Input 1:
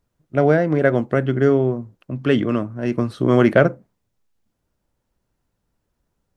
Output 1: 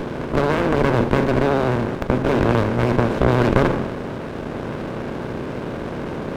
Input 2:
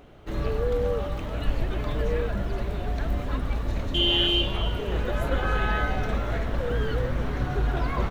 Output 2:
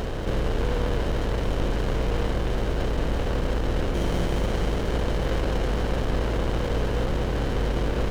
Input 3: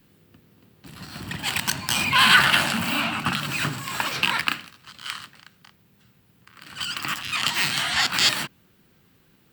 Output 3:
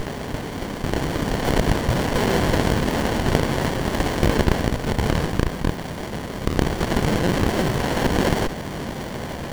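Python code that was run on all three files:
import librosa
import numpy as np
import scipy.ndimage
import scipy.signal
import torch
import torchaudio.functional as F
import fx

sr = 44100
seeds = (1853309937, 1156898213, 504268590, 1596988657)

y = fx.bin_compress(x, sr, power=0.2)
y = fx.vibrato(y, sr, rate_hz=14.0, depth_cents=55.0)
y = fx.running_max(y, sr, window=33)
y = y * librosa.db_to_amplitude(-5.5)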